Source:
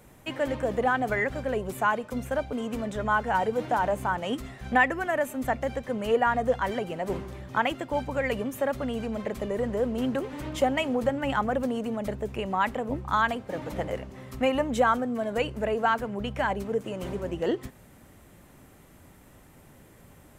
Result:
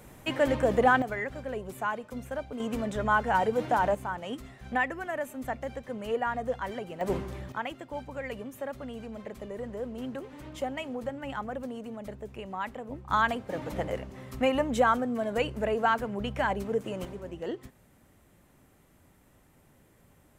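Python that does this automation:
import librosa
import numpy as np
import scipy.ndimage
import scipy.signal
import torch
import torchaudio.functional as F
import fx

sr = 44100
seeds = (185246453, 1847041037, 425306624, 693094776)

y = fx.gain(x, sr, db=fx.steps((0.0, 3.0), (1.02, -6.5), (2.6, 0.0), (3.95, -6.5), (7.01, 1.0), (7.52, -9.0), (13.1, -1.0), (17.05, -8.0)))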